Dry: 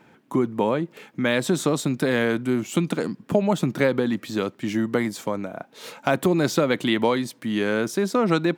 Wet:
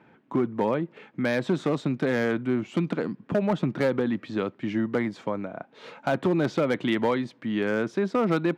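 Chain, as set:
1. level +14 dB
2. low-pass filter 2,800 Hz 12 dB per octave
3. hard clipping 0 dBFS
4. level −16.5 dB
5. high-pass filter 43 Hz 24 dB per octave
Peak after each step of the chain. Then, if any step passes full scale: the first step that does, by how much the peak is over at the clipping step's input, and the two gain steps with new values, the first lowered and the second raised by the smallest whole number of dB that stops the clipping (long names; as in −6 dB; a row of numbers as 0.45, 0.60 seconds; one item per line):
+7.5, +7.5, 0.0, −16.5, −13.0 dBFS
step 1, 7.5 dB
step 1 +6 dB, step 4 −8.5 dB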